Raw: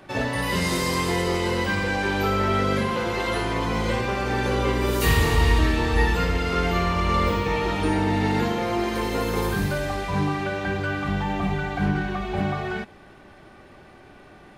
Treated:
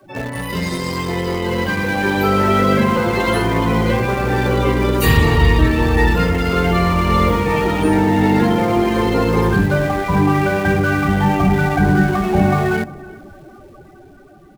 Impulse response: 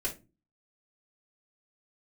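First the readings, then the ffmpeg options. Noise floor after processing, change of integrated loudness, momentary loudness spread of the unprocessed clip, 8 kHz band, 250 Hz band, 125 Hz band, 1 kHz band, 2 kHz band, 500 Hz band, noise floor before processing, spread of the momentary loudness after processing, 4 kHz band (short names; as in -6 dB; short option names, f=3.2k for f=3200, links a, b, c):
-43 dBFS, +7.5 dB, 6 LU, +2.0 dB, +9.5 dB, +8.5 dB, +7.0 dB, +6.0 dB, +7.5 dB, -48 dBFS, 7 LU, +3.0 dB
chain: -filter_complex "[0:a]aeval=exprs='val(0)+0.5*0.0237*sgn(val(0))':c=same,highshelf=f=5.9k:g=5,bandreject=f=50:t=h:w=6,bandreject=f=100:t=h:w=6,bandreject=f=150:t=h:w=6,bandreject=f=200:t=h:w=6,bandreject=f=250:t=h:w=6,afftdn=nr=23:nf=-29,asplit=2[a][b];[b]adelay=352,lowpass=f=2.4k:p=1,volume=-16dB,asplit=2[c][d];[d]adelay=352,lowpass=f=2.4k:p=1,volume=0.19[e];[a][c][e]amix=inputs=3:normalize=0,adynamicequalizer=threshold=0.0141:dfrequency=160:dqfactor=0.84:tfrequency=160:tqfactor=0.84:attack=5:release=100:ratio=0.375:range=2.5:mode=boostabove:tftype=bell,dynaudnorm=f=230:g=17:m=11.5dB,asplit=2[f][g];[g]aeval=exprs='val(0)*gte(abs(val(0)),0.141)':c=same,volume=-6.5dB[h];[f][h]amix=inputs=2:normalize=0,volume=-3.5dB"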